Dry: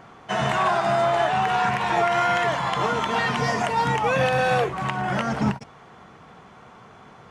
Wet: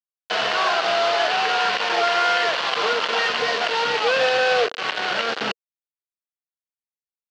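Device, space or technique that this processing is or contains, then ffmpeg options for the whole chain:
hand-held game console: -af "acrusher=bits=3:mix=0:aa=0.000001,highpass=440,equalizer=f=470:t=q:w=4:g=7,equalizer=f=910:t=q:w=4:g=-4,equalizer=f=1.5k:t=q:w=4:g=4,equalizer=f=2.9k:t=q:w=4:g=6,equalizer=f=4.4k:t=q:w=4:g=4,lowpass=f=5k:w=0.5412,lowpass=f=5k:w=1.3066"

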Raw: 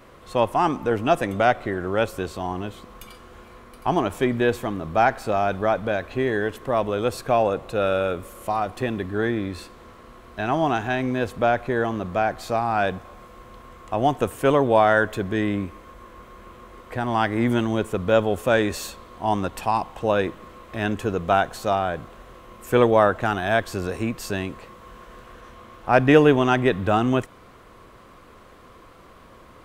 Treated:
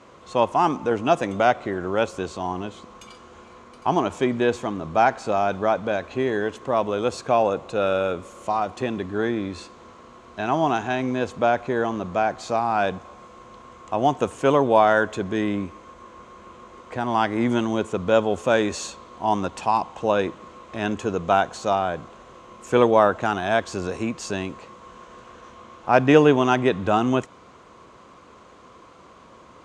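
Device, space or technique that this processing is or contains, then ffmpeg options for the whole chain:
car door speaker: -af "highpass=84,equalizer=f=110:t=q:w=4:g=-5,equalizer=f=960:t=q:w=4:g=3,equalizer=f=1.8k:t=q:w=4:g=-4,equalizer=f=6.6k:t=q:w=4:g=6,lowpass=f=8k:w=0.5412,lowpass=f=8k:w=1.3066"

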